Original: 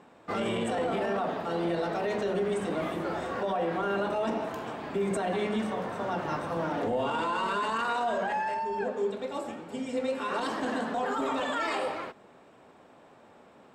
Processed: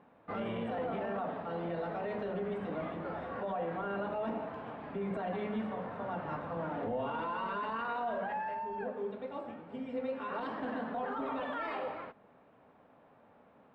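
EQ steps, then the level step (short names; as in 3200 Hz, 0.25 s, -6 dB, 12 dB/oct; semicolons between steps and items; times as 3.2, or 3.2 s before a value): air absorption 420 m; bell 360 Hz -8.5 dB 0.25 oct; -4.5 dB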